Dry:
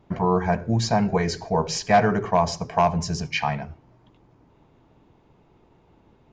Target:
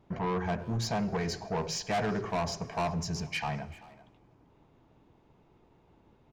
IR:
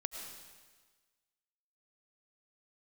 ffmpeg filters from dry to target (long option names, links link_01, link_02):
-filter_complex "[0:a]asoftclip=type=tanh:threshold=-21dB,asplit=2[link_01][link_02];[link_02]adelay=390,highpass=300,lowpass=3400,asoftclip=type=hard:threshold=-30.5dB,volume=-15dB[link_03];[link_01][link_03]amix=inputs=2:normalize=0,asplit=2[link_04][link_05];[1:a]atrim=start_sample=2205[link_06];[link_05][link_06]afir=irnorm=-1:irlink=0,volume=-15.5dB[link_07];[link_04][link_07]amix=inputs=2:normalize=0,volume=-6.5dB"